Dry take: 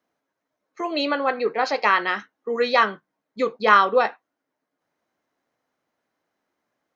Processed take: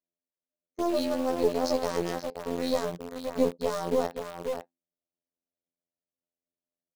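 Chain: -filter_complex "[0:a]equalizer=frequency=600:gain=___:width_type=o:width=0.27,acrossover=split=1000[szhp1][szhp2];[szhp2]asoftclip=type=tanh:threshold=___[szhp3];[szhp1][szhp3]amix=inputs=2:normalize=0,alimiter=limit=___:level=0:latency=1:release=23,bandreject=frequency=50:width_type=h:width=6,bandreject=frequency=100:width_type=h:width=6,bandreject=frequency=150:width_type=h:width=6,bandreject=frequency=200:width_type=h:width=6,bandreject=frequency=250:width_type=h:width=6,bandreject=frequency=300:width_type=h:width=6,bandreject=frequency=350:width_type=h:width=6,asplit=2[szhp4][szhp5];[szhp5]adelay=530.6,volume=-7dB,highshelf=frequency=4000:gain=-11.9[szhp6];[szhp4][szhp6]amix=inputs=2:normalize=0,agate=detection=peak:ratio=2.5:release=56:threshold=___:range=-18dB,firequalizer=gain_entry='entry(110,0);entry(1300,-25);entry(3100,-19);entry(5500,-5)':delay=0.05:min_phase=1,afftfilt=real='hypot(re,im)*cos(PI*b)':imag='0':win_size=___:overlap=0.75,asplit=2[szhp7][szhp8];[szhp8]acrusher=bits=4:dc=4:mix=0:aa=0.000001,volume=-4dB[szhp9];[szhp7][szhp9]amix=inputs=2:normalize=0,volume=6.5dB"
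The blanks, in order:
8.5, -20dB, -15dB, -37dB, 2048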